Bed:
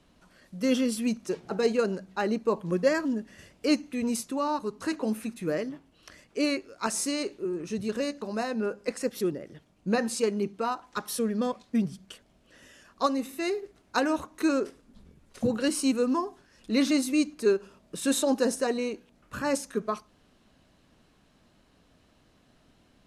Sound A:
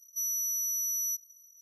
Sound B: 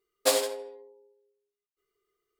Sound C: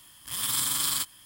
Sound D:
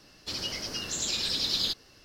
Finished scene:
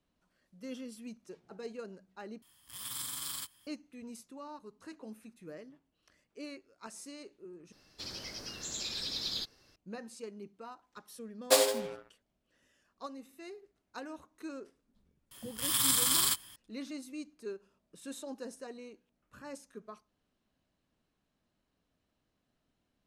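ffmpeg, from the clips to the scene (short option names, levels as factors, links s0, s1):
-filter_complex "[3:a]asplit=2[s0][s1];[0:a]volume=0.126[s2];[4:a]bandreject=f=2900:w=14[s3];[2:a]acrusher=bits=6:mix=0:aa=0.5[s4];[s2]asplit=3[s5][s6][s7];[s5]atrim=end=2.424[s8];[s0]atrim=end=1.25,asetpts=PTS-STARTPTS,volume=0.237[s9];[s6]atrim=start=3.666:end=7.724[s10];[s3]atrim=end=2.04,asetpts=PTS-STARTPTS,volume=0.398[s11];[s7]atrim=start=9.756[s12];[s4]atrim=end=2.39,asetpts=PTS-STARTPTS,volume=0.944,afade=t=in:d=0.004:c=hsin,afade=t=out:st=2.386:d=0.004:c=hsin,adelay=11250[s13];[s1]atrim=end=1.25,asetpts=PTS-STARTPTS,volume=0.944,afade=t=in:d=0.004:c=hsin,afade=t=out:st=1.246:d=0.004:c=hsin,adelay=15310[s14];[s8][s9]acrossfade=d=0.004:c1=hsin:c2=hsin[s15];[s15][s10]acrossfade=d=0.004:c1=hsin:c2=hsin[s16];[s16][s11]acrossfade=d=0.004:c1=hsin:c2=hsin[s17];[s17][s12]acrossfade=d=0.004:c1=hsin:c2=hsin[s18];[s18][s13][s14]amix=inputs=3:normalize=0"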